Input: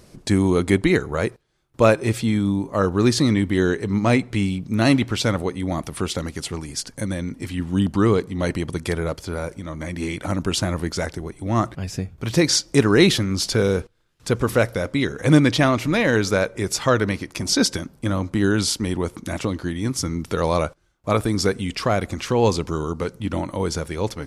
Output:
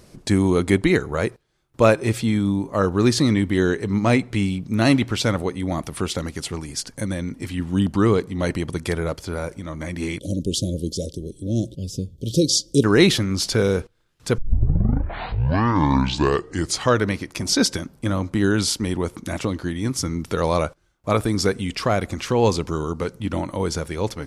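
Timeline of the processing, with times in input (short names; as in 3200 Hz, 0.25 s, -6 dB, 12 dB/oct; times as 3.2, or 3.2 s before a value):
10.19–12.84 Chebyshev band-stop 550–3200 Hz, order 4
14.38 tape start 2.61 s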